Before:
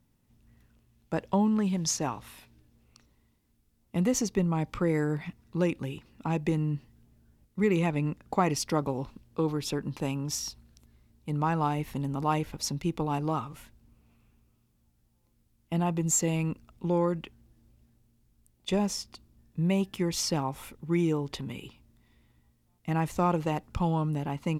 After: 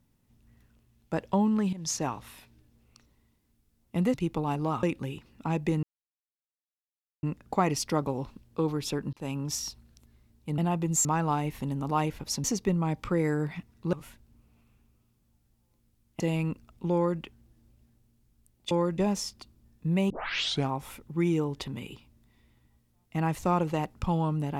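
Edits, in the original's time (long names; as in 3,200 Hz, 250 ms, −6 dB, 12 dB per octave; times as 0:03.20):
0:01.73–0:01.98: fade in, from −16 dB
0:04.14–0:05.63: swap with 0:12.77–0:13.46
0:06.63–0:08.03: silence
0:09.93–0:10.23: fade in equal-power
0:15.73–0:16.20: move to 0:11.38
0:16.94–0:17.21: duplicate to 0:18.71
0:19.83: tape start 0.59 s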